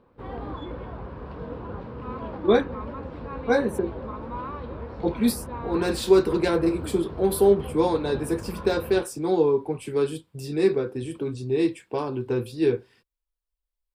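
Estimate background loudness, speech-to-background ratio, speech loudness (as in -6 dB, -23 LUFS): -36.5 LUFS, 12.0 dB, -24.5 LUFS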